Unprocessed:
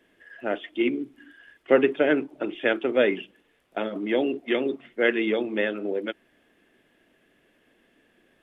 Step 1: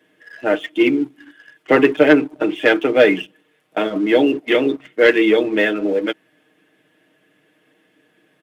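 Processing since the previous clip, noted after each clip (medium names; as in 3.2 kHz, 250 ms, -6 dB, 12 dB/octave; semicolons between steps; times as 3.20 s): high-pass 96 Hz 24 dB/octave; comb 6.5 ms, depth 68%; waveshaping leveller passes 1; trim +4.5 dB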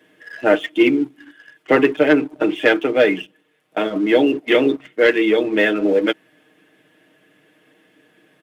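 gain riding 0.5 s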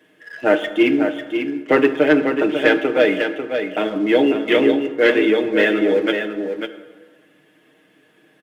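on a send: delay 545 ms -7 dB; on the sum: plate-style reverb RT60 1.4 s, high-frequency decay 0.6×, DRR 10 dB; trim -1 dB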